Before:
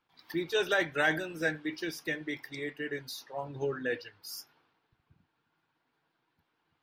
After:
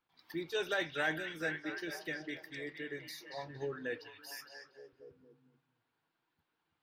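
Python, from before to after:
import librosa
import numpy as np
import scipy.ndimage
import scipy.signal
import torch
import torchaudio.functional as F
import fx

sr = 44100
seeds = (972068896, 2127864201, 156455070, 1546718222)

y = fx.echo_stepped(x, sr, ms=231, hz=3600.0, octaves=-0.7, feedback_pct=70, wet_db=-3.5)
y = y * 10.0 ** (-6.5 / 20.0)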